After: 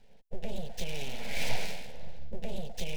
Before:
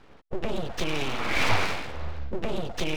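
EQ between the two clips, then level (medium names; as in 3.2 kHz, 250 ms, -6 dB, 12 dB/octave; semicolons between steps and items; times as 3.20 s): bass shelf 100 Hz +8.5 dB; treble shelf 7.5 kHz +10.5 dB; static phaser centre 320 Hz, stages 6; -8.0 dB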